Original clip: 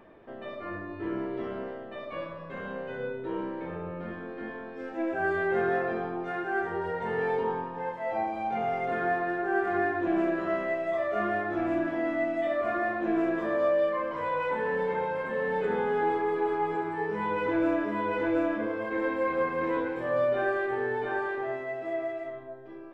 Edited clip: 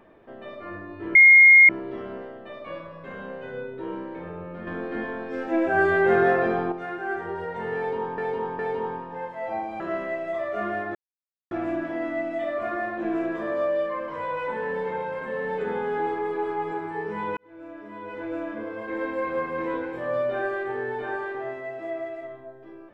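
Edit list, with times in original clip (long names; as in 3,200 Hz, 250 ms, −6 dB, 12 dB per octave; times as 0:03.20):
0:01.15: insert tone 2,140 Hz −8.5 dBFS 0.54 s
0:04.13–0:06.18: clip gain +7.5 dB
0:07.23–0:07.64: repeat, 3 plays
0:08.44–0:10.39: remove
0:11.54: splice in silence 0.56 s
0:17.40–0:19.14: fade in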